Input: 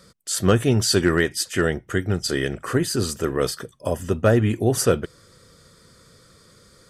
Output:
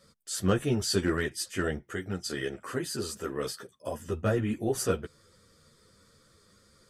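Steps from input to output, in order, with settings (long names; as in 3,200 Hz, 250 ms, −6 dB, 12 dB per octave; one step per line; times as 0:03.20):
0:01.81–0:04.08: high-pass filter 170 Hz 6 dB per octave
string-ensemble chorus
level −6 dB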